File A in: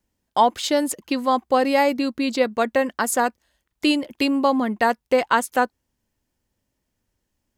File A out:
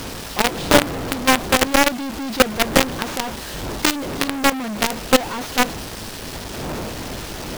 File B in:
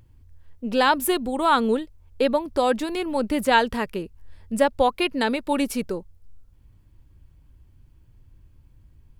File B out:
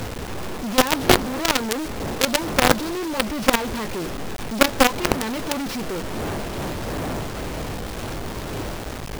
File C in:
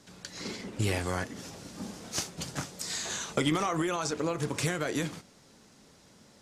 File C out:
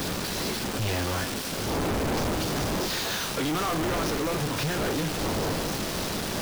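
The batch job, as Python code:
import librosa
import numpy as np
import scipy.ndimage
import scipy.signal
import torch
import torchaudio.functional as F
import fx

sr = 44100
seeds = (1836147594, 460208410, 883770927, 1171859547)

y = fx.delta_mod(x, sr, bps=32000, step_db=-34.0)
y = fx.dmg_wind(y, sr, seeds[0], corner_hz=490.0, level_db=-33.0)
y = fx.peak_eq(y, sr, hz=2100.0, db=-4.0, octaves=0.28)
y = fx.doubler(y, sr, ms=19.0, db=-13.5)
y = fx.quant_companded(y, sr, bits=2)
y = y * 10.0 ** (-1.0 / 20.0)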